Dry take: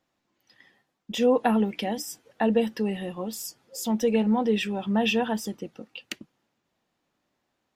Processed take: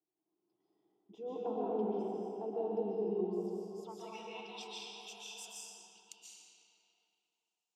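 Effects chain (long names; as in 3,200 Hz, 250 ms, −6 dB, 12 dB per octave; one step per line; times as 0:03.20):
phaser with its sweep stopped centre 360 Hz, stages 8
band-pass filter sweep 370 Hz → 7,500 Hz, 0:03.17–0:04.84
comb and all-pass reverb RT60 3 s, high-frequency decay 0.7×, pre-delay 100 ms, DRR −7 dB
level −6.5 dB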